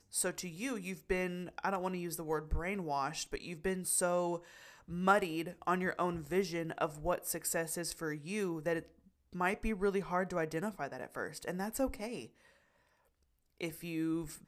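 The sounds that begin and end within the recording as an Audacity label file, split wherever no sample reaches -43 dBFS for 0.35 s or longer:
4.900000	8.810000	sound
9.350000	12.250000	sound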